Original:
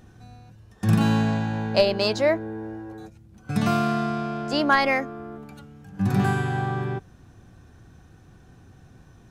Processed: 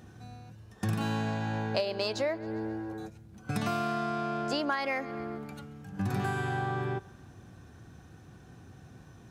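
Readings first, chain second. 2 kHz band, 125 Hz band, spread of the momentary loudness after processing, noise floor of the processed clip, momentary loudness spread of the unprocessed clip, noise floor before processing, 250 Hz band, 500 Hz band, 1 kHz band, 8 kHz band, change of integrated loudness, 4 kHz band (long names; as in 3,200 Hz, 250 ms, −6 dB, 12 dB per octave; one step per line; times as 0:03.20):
−8.5 dB, −9.0 dB, 21 LU, −53 dBFS, 18 LU, −52 dBFS, −9.5 dB, −8.5 dB, −7.0 dB, −5.0 dB, −9.0 dB, −8.0 dB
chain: dynamic equaliser 180 Hz, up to −7 dB, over −37 dBFS, Q 1.6
high-pass filter 74 Hz
on a send: feedback echo with a high-pass in the loop 135 ms, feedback 53%, level −23.5 dB
on the sum: downward compressor 5 to 1, threshold −28 dBFS, peak gain reduction 13.5 dB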